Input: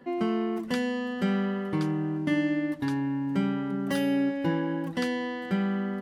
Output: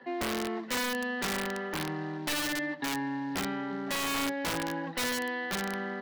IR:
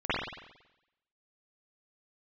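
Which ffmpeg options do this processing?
-filter_complex "[0:a]acrossover=split=340[link_01][link_02];[link_02]asoftclip=type=tanh:threshold=-31dB[link_03];[link_01][link_03]amix=inputs=2:normalize=0,acrusher=bits=7:mode=log:mix=0:aa=0.000001,highpass=frequency=180:width=0.5412,highpass=frequency=180:width=1.3066,equalizer=frequency=200:width_type=q:width=4:gain=-8,equalizer=frequency=310:width_type=q:width=4:gain=-7,equalizer=frequency=850:width_type=q:width=4:gain=6,equalizer=frequency=1800:width_type=q:width=4:gain=8,equalizer=frequency=4000:width_type=q:width=4:gain=5,lowpass=frequency=4900:width=0.5412,lowpass=frequency=4900:width=1.3066,aeval=exprs='(mod(17.8*val(0)+1,2)-1)/17.8':channel_layout=same"

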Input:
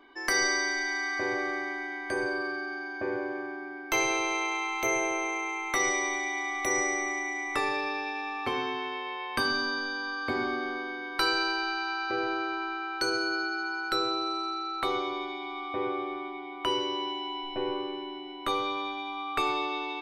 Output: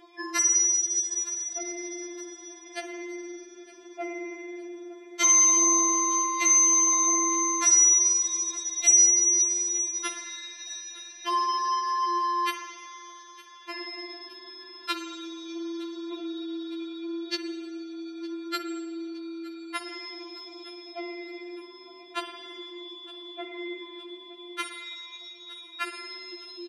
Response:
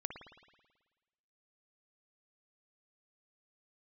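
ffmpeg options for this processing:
-filter_complex "[0:a]atempo=0.75,lowpass=5100,crystalizer=i=9.5:c=0,highpass=150,acompressor=threshold=-30dB:ratio=3,aecho=1:1:913|1826|2739|3652:0.1|0.051|0.026|0.0133,asplit=2[link_01][link_02];[1:a]atrim=start_sample=2205[link_03];[link_02][link_03]afir=irnorm=-1:irlink=0,volume=4.5dB[link_04];[link_01][link_04]amix=inputs=2:normalize=0,afftfilt=real='re*4*eq(mod(b,16),0)':imag='im*4*eq(mod(b,16),0)':win_size=2048:overlap=0.75"

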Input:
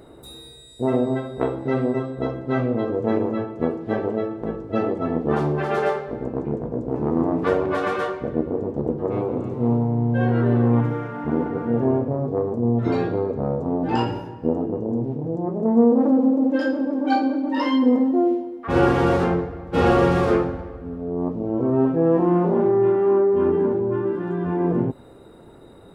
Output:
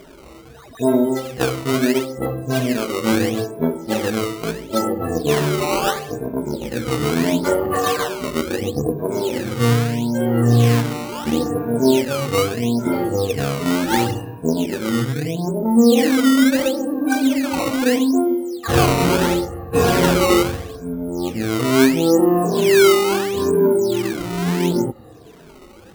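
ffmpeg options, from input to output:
ffmpeg -i in.wav -af "afftfilt=real='re*pow(10,17/40*sin(2*PI*(1.6*log(max(b,1)*sr/1024/100)/log(2)-(-1.1)*(pts-256)/sr)))':imag='im*pow(10,17/40*sin(2*PI*(1.6*log(max(b,1)*sr/1024/100)/log(2)-(-1.1)*(pts-256)/sr)))':win_size=1024:overlap=0.75,acrusher=samples=15:mix=1:aa=0.000001:lfo=1:lforange=24:lforate=0.75" out.wav

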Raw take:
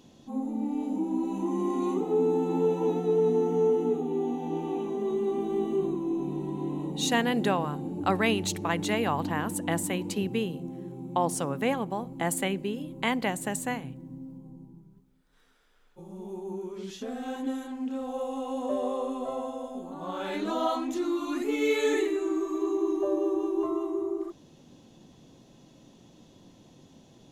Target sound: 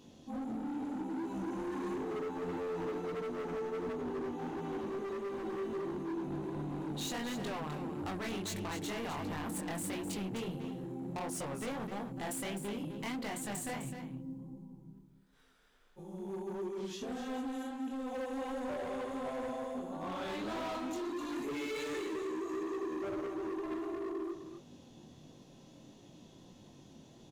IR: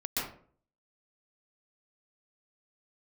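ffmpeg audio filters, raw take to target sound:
-af "acompressor=threshold=-30dB:ratio=2.5,flanger=delay=19.5:depth=6.8:speed=1.5,asoftclip=type=hard:threshold=-37.5dB,aecho=1:1:256:0.355,volume=1dB"

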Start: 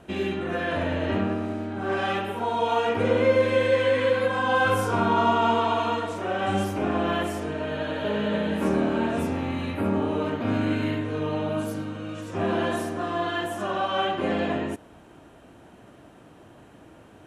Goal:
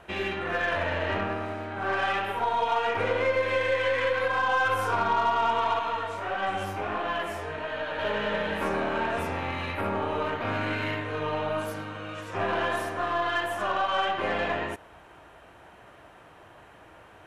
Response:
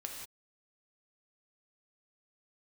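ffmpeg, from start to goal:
-filter_complex "[0:a]equalizer=frequency=125:width_type=o:width=1:gain=-4,equalizer=frequency=250:width_type=o:width=1:gain=-11,equalizer=frequency=1000:width_type=o:width=1:gain=4,equalizer=frequency=2000:width_type=o:width=1:gain=5,equalizer=frequency=8000:width_type=o:width=1:gain=-4,acompressor=threshold=-24dB:ratio=2.5,asettb=1/sr,asplit=3[link_01][link_02][link_03];[link_01]atrim=end=5.794[link_04];[link_02]atrim=start=5.79:end=7.99,asetpts=PTS-STARTPTS,afade=type=in:duration=0.004:curve=qsin,afade=type=out:start_time=2.196:duration=0.004:curve=qsin,flanger=delay=15.5:depth=6.2:speed=1.5[link_05];[link_03]atrim=start=7.986[link_06];[link_04][link_05]acrossfade=duration=0.004:curve1=hsin:curve2=qsin[link_07];[link_07][link_06]acrossfade=duration=0.004:curve1=qsin:curve2=hsin,aeval=exprs='0.211*(cos(1*acos(clip(val(0)/0.211,-1,1)))-cos(1*PI/2))+0.00596*(cos(8*acos(clip(val(0)/0.211,-1,1)))-cos(8*PI/2))':channel_layout=same"

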